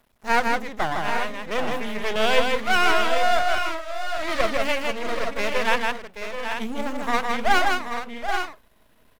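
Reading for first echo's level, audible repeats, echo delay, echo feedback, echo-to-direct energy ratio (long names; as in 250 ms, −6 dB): −3.5 dB, 3, 159 ms, repeats not evenly spaced, −1.5 dB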